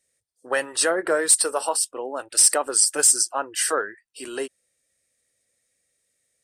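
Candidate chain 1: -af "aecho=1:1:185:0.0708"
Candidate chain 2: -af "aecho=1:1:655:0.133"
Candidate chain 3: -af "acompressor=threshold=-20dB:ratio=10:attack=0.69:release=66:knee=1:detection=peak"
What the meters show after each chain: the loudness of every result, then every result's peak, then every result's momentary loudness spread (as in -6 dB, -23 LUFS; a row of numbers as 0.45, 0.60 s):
-20.0, -20.0, -27.0 LUFS; -6.0, -6.0, -12.5 dBFS; 16, 16, 8 LU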